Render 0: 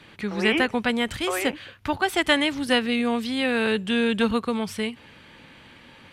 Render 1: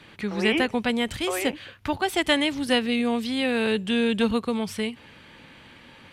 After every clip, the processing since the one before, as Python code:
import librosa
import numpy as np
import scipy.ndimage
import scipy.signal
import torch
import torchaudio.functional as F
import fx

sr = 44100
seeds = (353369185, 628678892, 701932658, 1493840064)

y = fx.dynamic_eq(x, sr, hz=1400.0, q=1.4, threshold_db=-38.0, ratio=4.0, max_db=-5)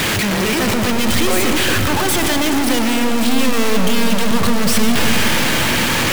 y = np.sign(x) * np.sqrt(np.mean(np.square(x)))
y = fx.rev_freeverb(y, sr, rt60_s=3.6, hf_ratio=0.35, predelay_ms=70, drr_db=4.5)
y = y * 10.0 ** (8.0 / 20.0)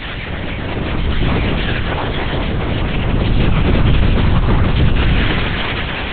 y = fx.chorus_voices(x, sr, voices=4, hz=0.8, base_ms=22, depth_ms=5.0, mix_pct=50)
y = fx.lpc_vocoder(y, sr, seeds[0], excitation='whisper', order=8)
y = y * 10.0 ** (-2.0 / 20.0)